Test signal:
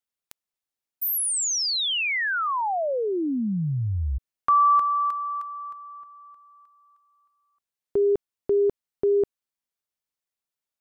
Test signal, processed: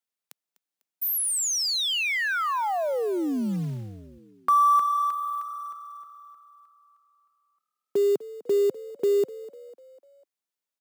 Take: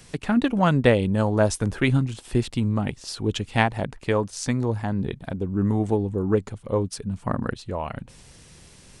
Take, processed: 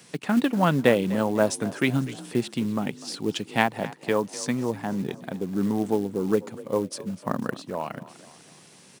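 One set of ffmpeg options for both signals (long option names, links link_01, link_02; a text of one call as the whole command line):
ffmpeg -i in.wav -filter_complex "[0:a]highpass=frequency=150:width=0.5412,highpass=frequency=150:width=1.3066,acrusher=bits=6:mode=log:mix=0:aa=0.000001,asplit=5[link_01][link_02][link_03][link_04][link_05];[link_02]adelay=249,afreqshift=39,volume=-18dB[link_06];[link_03]adelay=498,afreqshift=78,volume=-23.8dB[link_07];[link_04]adelay=747,afreqshift=117,volume=-29.7dB[link_08];[link_05]adelay=996,afreqshift=156,volume=-35.5dB[link_09];[link_01][link_06][link_07][link_08][link_09]amix=inputs=5:normalize=0,volume=-1dB" out.wav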